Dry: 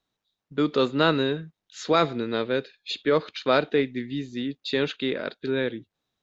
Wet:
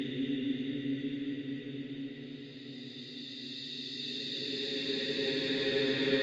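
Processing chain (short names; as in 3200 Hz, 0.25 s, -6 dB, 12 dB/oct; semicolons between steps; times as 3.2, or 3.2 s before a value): on a send: delay with a stepping band-pass 0.135 s, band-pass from 870 Hz, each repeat 0.7 oct, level -5 dB; on the sum: plate-style reverb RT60 1.2 s, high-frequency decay 0.9×, DRR 10 dB; Paulstretch 22×, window 0.25 s, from 4.46; gain -4.5 dB; AAC 32 kbps 32000 Hz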